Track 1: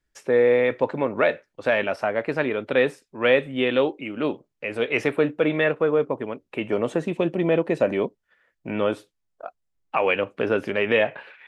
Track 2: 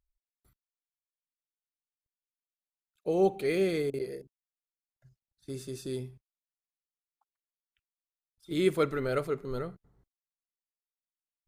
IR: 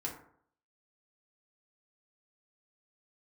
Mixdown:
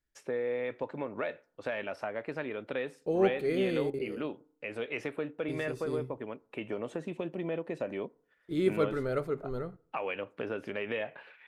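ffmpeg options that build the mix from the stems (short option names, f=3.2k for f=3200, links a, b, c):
-filter_complex "[0:a]acompressor=threshold=-25dB:ratio=2.5,volume=-9dB,asplit=2[a][b];[b]volume=-22dB[c];[1:a]agate=range=-19dB:threshold=-54dB:ratio=16:detection=peak,highshelf=f=2.4k:g=-9.5,volume=-1.5dB,asplit=2[d][e];[e]volume=-20.5dB[f];[2:a]atrim=start_sample=2205[g];[c][f]amix=inputs=2:normalize=0[h];[h][g]afir=irnorm=-1:irlink=0[i];[a][d][i]amix=inputs=3:normalize=0"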